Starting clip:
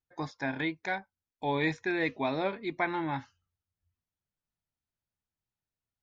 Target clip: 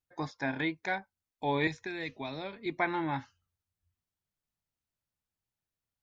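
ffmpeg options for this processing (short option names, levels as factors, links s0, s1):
-filter_complex "[0:a]asettb=1/sr,asplit=3[s0][s1][s2];[s0]atrim=end=1.674[s3];[s1]atrim=start=1.67:end=2.66,asetpts=PTS-STARTPTS,afade=t=in:d=0.004:c=qsin,afade=t=out:st=0.986:d=0.004:c=qsin,acrossover=split=130|3000[s4][s5][s6];[s5]acompressor=threshold=0.01:ratio=3[s7];[s4][s7][s6]amix=inputs=3:normalize=0[s8];[s2]atrim=start=2.656[s9];[s3][s8]acrossfade=d=0.004:c1=hsin:c2=qsin[s10];[s10][s9]acrossfade=d=0.004:c1=qsin:c2=hsin"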